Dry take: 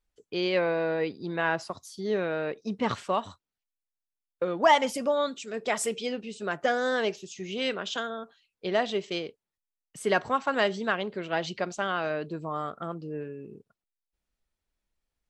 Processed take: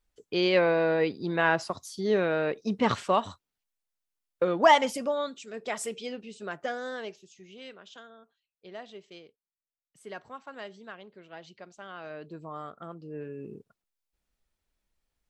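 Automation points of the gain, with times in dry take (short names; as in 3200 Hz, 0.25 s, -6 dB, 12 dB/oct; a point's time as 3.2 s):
4.54 s +3 dB
5.31 s -5 dB
6.44 s -5 dB
7.72 s -16.5 dB
11.74 s -16.5 dB
12.36 s -7 dB
12.99 s -7 dB
13.46 s +2.5 dB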